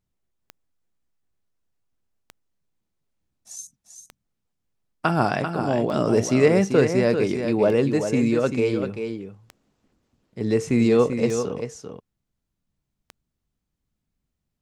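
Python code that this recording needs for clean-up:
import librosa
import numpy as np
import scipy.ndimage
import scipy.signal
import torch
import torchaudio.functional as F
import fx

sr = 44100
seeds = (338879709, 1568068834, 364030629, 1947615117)

y = fx.fix_declick_ar(x, sr, threshold=10.0)
y = fx.fix_echo_inverse(y, sr, delay_ms=391, level_db=-7.5)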